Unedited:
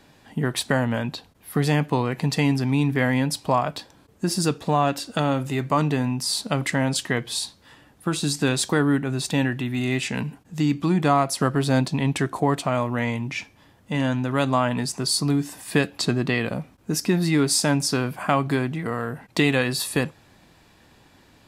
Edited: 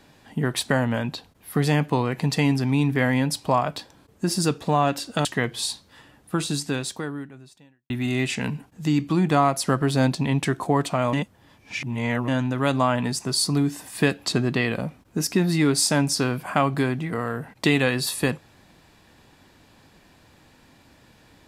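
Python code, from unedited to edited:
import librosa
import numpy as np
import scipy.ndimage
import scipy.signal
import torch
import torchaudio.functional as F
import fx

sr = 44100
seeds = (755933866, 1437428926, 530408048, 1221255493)

y = fx.edit(x, sr, fx.cut(start_s=5.25, length_s=1.73),
    fx.fade_out_span(start_s=8.09, length_s=1.54, curve='qua'),
    fx.reverse_span(start_s=12.86, length_s=1.15), tone=tone)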